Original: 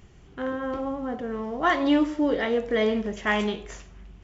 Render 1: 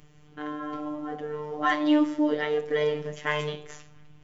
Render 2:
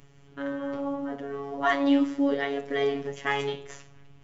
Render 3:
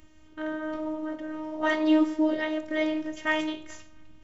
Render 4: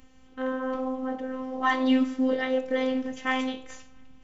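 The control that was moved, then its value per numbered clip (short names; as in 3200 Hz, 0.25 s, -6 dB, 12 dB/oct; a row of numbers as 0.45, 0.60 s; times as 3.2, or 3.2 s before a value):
robotiser, frequency: 150, 140, 310, 260 Hz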